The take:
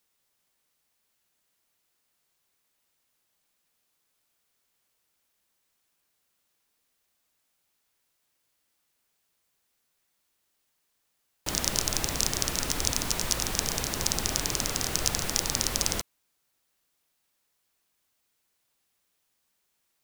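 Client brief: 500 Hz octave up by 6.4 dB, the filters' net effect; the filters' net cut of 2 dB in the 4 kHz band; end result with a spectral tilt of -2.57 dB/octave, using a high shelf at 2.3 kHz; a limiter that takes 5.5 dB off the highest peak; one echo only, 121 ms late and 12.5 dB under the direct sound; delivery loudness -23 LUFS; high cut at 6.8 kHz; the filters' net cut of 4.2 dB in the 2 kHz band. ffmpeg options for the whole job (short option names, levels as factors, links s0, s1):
-af "lowpass=6800,equalizer=f=500:t=o:g=8,equalizer=f=2000:t=o:g=-7,highshelf=f=2300:g=5.5,equalizer=f=4000:t=o:g=-6.5,alimiter=limit=0.376:level=0:latency=1,aecho=1:1:121:0.237,volume=2.24"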